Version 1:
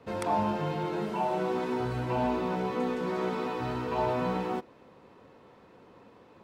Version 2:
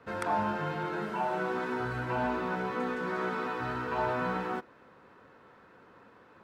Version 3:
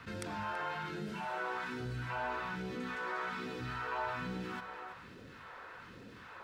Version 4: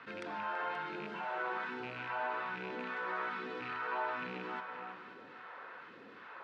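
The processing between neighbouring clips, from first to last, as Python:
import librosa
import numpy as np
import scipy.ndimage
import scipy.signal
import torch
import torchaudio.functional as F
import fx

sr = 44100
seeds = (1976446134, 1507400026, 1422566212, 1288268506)

y1 = fx.peak_eq(x, sr, hz=1500.0, db=12.0, octaves=0.76)
y1 = y1 * librosa.db_to_amplitude(-4.0)
y2 = y1 + 10.0 ** (-16.0 / 20.0) * np.pad(y1, (int(330 * sr / 1000.0), 0))[:len(y1)]
y2 = fx.phaser_stages(y2, sr, stages=2, low_hz=170.0, high_hz=1000.0, hz=1.2, feedback_pct=40)
y2 = fx.env_flatten(y2, sr, amount_pct=50)
y2 = y2 * librosa.db_to_amplitude(-6.5)
y3 = fx.rattle_buzz(y2, sr, strikes_db=-40.0, level_db=-33.0)
y3 = fx.bandpass_edges(y3, sr, low_hz=310.0, high_hz=3000.0)
y3 = y3 + 10.0 ** (-12.0 / 20.0) * np.pad(y3, (int(529 * sr / 1000.0), 0))[:len(y3)]
y3 = y3 * librosa.db_to_amplitude(1.0)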